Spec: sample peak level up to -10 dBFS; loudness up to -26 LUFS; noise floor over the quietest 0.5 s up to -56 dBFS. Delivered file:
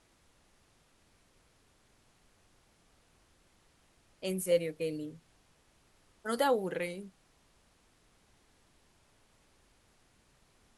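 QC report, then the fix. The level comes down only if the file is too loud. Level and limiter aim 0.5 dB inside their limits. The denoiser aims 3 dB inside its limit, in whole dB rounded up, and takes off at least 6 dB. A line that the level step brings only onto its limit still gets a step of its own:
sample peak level -17.5 dBFS: pass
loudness -34.0 LUFS: pass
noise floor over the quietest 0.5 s -68 dBFS: pass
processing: none needed

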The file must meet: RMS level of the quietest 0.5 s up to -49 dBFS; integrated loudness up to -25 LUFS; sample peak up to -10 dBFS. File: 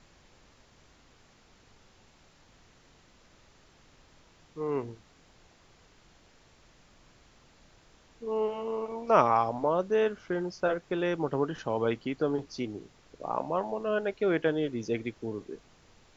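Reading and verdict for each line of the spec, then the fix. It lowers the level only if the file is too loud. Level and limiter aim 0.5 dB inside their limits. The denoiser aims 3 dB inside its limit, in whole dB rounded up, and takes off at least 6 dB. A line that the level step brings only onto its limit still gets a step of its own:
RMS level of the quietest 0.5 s -60 dBFS: pass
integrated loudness -30.5 LUFS: pass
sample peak -7.0 dBFS: fail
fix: peak limiter -10.5 dBFS

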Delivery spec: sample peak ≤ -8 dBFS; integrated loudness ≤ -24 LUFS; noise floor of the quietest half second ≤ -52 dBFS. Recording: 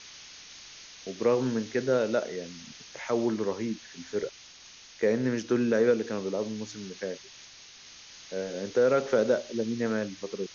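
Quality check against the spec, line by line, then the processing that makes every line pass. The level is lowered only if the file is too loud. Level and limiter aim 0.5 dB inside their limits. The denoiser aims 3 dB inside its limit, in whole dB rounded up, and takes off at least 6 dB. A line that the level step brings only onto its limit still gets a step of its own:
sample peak -12.5 dBFS: pass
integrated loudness -29.0 LUFS: pass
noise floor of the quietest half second -51 dBFS: fail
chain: noise reduction 6 dB, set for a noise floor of -51 dBFS

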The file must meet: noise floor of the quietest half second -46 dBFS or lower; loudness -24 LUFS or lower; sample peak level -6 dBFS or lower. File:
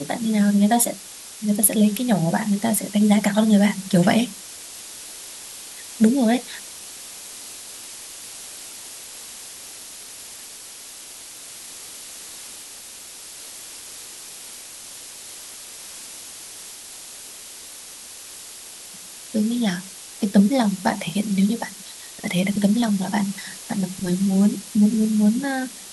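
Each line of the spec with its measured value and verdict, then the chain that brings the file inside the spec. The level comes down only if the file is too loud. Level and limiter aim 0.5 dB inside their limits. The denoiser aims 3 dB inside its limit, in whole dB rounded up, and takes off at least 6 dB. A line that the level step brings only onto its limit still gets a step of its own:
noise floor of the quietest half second -40 dBFS: fail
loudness -20.5 LUFS: fail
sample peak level -1.5 dBFS: fail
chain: noise reduction 6 dB, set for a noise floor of -40 dBFS; trim -4 dB; peak limiter -6.5 dBFS

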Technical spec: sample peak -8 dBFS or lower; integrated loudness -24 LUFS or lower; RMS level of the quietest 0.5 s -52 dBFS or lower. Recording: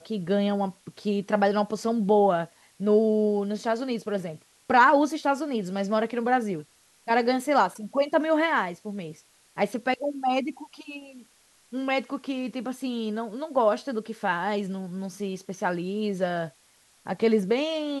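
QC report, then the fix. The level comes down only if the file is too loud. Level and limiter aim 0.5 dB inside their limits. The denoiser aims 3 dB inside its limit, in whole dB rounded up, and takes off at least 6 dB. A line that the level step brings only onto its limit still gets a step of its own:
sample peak -7.5 dBFS: fail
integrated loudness -26.0 LUFS: pass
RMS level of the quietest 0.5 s -61 dBFS: pass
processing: peak limiter -8.5 dBFS

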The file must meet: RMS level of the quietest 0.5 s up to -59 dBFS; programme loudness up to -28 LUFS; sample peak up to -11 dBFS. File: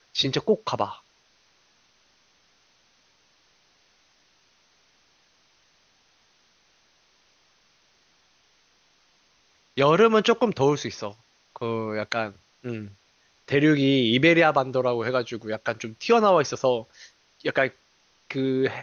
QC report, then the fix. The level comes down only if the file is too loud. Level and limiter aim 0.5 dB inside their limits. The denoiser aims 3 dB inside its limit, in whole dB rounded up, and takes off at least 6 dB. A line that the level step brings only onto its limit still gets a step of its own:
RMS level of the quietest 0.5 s -63 dBFS: pass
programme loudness -23.5 LUFS: fail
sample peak -4.5 dBFS: fail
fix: trim -5 dB; peak limiter -11.5 dBFS

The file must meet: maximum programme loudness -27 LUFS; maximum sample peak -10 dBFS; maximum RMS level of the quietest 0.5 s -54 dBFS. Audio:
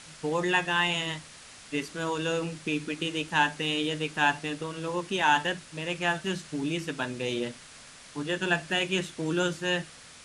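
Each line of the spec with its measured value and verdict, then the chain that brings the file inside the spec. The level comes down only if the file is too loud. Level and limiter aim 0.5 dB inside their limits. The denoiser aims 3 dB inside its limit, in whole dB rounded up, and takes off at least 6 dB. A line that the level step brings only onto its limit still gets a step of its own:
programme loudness -29.0 LUFS: pass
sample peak -9.5 dBFS: fail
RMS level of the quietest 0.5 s -49 dBFS: fail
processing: noise reduction 8 dB, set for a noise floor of -49 dBFS; peak limiter -10.5 dBFS

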